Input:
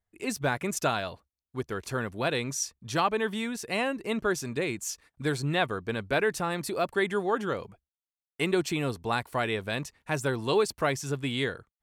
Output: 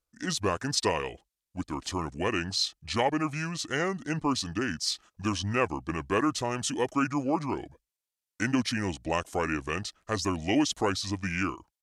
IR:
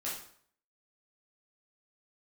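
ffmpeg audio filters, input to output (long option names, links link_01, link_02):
-af "bass=frequency=250:gain=-3,treble=frequency=4000:gain=6,asetrate=31183,aresample=44100,atempo=1.41421"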